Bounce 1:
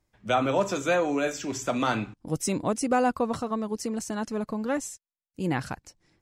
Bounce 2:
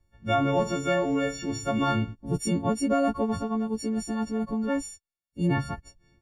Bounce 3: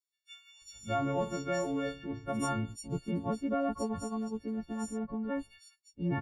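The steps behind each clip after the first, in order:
every partial snapped to a pitch grid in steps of 4 semitones; RIAA equalisation playback; level −4 dB
multiband delay without the direct sound highs, lows 610 ms, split 3,200 Hz; level −7.5 dB

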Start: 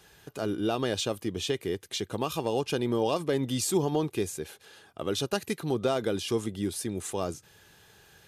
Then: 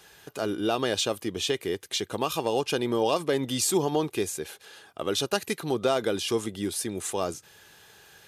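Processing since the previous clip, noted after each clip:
low-shelf EQ 260 Hz −9 dB
level +4.5 dB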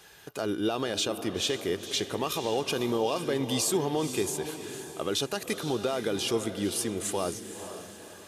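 brickwall limiter −18 dBFS, peak gain reduction 7.5 dB
feedback delay with all-pass diffusion 499 ms, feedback 42%, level −10 dB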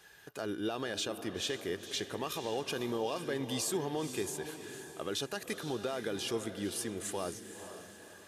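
parametric band 1,700 Hz +7 dB 0.26 octaves
level −7 dB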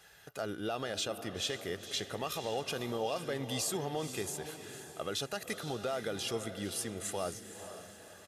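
comb filter 1.5 ms, depth 42%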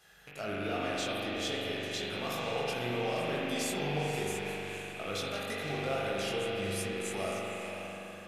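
loose part that buzzes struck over −53 dBFS, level −32 dBFS
chorus effect 2.3 Hz, delay 19 ms, depth 3.8 ms
spring reverb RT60 2.9 s, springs 41 ms, chirp 60 ms, DRR −4.5 dB

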